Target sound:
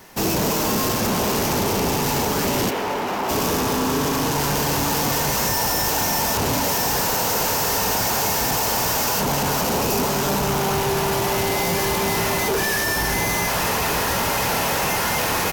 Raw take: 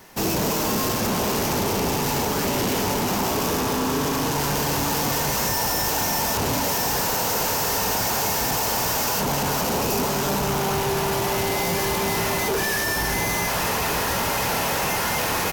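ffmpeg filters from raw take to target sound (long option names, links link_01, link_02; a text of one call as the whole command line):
ffmpeg -i in.wav -filter_complex "[0:a]asplit=3[link_01][link_02][link_03];[link_01]afade=type=out:start_time=2.69:duration=0.02[link_04];[link_02]bass=frequency=250:gain=-13,treble=frequency=4000:gain=-14,afade=type=in:start_time=2.69:duration=0.02,afade=type=out:start_time=3.28:duration=0.02[link_05];[link_03]afade=type=in:start_time=3.28:duration=0.02[link_06];[link_04][link_05][link_06]amix=inputs=3:normalize=0,volume=2dB" out.wav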